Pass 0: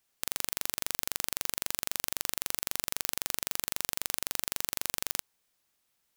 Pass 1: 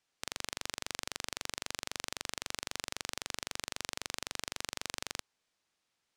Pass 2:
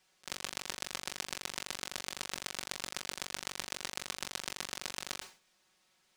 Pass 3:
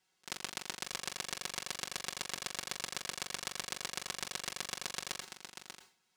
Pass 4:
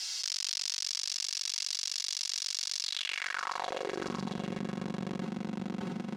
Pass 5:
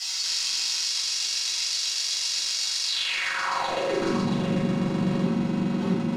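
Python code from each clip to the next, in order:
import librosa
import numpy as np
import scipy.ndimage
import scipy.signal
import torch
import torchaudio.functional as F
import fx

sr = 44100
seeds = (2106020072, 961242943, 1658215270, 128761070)

y1 = scipy.signal.sosfilt(scipy.signal.butter(2, 6400.0, 'lowpass', fs=sr, output='sos'), x)
y1 = fx.low_shelf(y1, sr, hz=84.0, db=-6.5)
y1 = F.gain(torch.from_numpy(y1), -1.5).numpy()
y2 = y1 + 0.67 * np.pad(y1, (int(5.4 * sr / 1000.0), 0))[:len(y1)]
y2 = fx.auto_swell(y2, sr, attack_ms=227.0)
y2 = fx.sustainer(y2, sr, db_per_s=150.0)
y2 = F.gain(torch.from_numpy(y2), 8.5).numpy()
y3 = fx.notch_comb(y2, sr, f0_hz=600.0)
y3 = y3 + 10.0 ** (-5.5 / 20.0) * np.pad(y3, (int(590 * sr / 1000.0), 0))[:len(y3)]
y3 = fx.upward_expand(y3, sr, threshold_db=-51.0, expansion=1.5)
y3 = F.gain(torch.from_numpy(y3), 1.5).numpy()
y4 = fx.filter_sweep_bandpass(y3, sr, from_hz=5200.0, to_hz=210.0, start_s=2.81, end_s=4.19, q=3.2)
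y4 = fx.echo_feedback(y4, sr, ms=678, feedback_pct=27, wet_db=-20)
y4 = fx.env_flatten(y4, sr, amount_pct=100)
y4 = F.gain(torch.from_numpy(y4), 8.5).numpy()
y5 = fx.room_shoebox(y4, sr, seeds[0], volume_m3=460.0, walls='furnished', distance_m=6.6)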